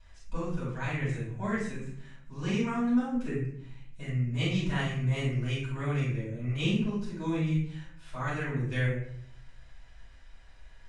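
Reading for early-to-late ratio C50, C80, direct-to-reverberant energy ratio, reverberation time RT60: 1.0 dB, 6.0 dB, −9.5 dB, 0.60 s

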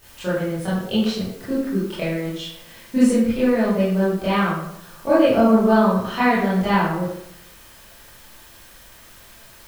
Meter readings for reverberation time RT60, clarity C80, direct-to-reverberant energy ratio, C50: 0.80 s, 4.0 dB, −11.5 dB, 0.0 dB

